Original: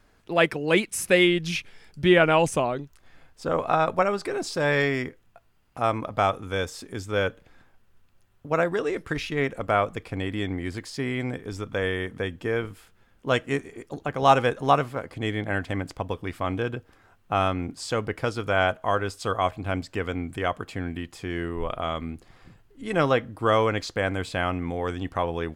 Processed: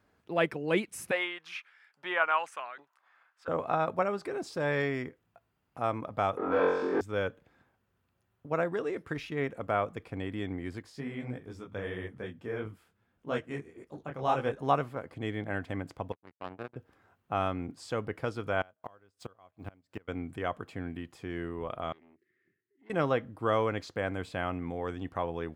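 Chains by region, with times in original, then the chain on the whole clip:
0:01.11–0:03.48: high-shelf EQ 4,200 Hz −9.5 dB + auto-filter high-pass saw up 1.2 Hz 830–1,700 Hz
0:06.37–0:07.01: leveller curve on the samples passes 5 + flat-topped band-pass 730 Hz, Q 0.65 + flutter between parallel walls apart 3.8 metres, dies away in 1 s
0:10.82–0:14.59: low-shelf EQ 140 Hz +4 dB + micro pitch shift up and down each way 56 cents
0:16.12–0:16.76: parametric band 4,400 Hz −13 dB 1.3 octaves + power curve on the samples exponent 3
0:18.61–0:20.08: mu-law and A-law mismatch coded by A + gate with flip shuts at −20 dBFS, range −27 dB
0:21.92–0:22.90: pair of resonant band-passes 840 Hz, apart 2.3 octaves + parametric band 710 Hz −14.5 dB 1.3 octaves + saturating transformer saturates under 1,100 Hz
whole clip: high-pass filter 81 Hz; parametric band 7,400 Hz −7 dB 2.9 octaves; level −6 dB

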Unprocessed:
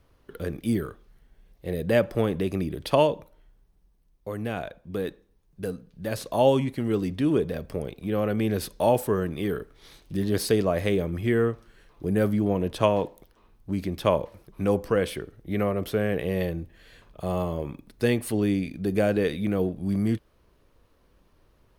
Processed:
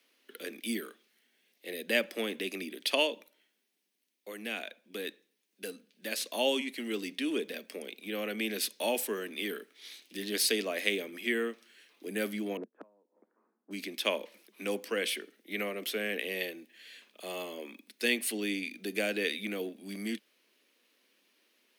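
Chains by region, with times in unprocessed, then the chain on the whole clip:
0:12.57–0:13.71: Butterworth low-pass 1,400 Hz + gate with flip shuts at −16 dBFS, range −33 dB
whole clip: Butterworth high-pass 210 Hz 72 dB per octave; high shelf with overshoot 1,600 Hz +12 dB, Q 1.5; level −9 dB

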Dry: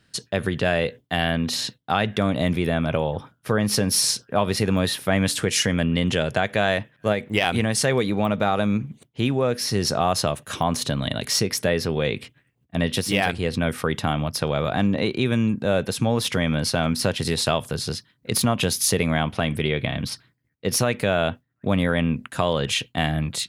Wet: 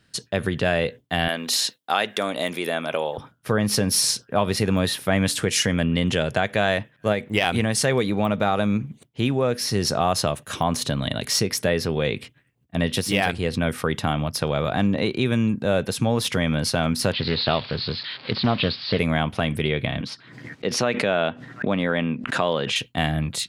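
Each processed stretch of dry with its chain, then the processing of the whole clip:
0:01.28–0:03.18: high-pass filter 370 Hz + high-shelf EQ 5,000 Hz +9 dB
0:17.12–0:18.99: spike at every zero crossing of −15.5 dBFS + Butterworth low-pass 4,600 Hz 96 dB per octave + highs frequency-modulated by the lows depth 0.31 ms
0:20.01–0:22.76: band-pass filter 190–4,700 Hz + background raised ahead of every attack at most 65 dB per second
whole clip: no processing

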